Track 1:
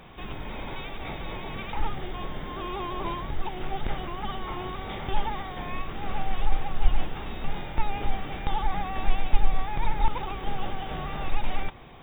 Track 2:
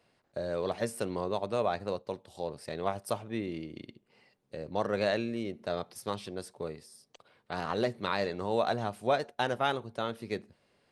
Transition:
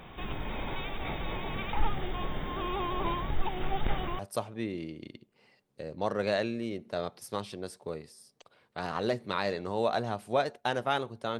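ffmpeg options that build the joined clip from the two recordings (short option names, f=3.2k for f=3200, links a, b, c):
-filter_complex "[0:a]apad=whole_dur=11.39,atrim=end=11.39,atrim=end=4.192[a];[1:a]atrim=start=2.928:end=10.13[b];[a][b]acrossfade=d=0.004:c1=hsin:c2=hsin"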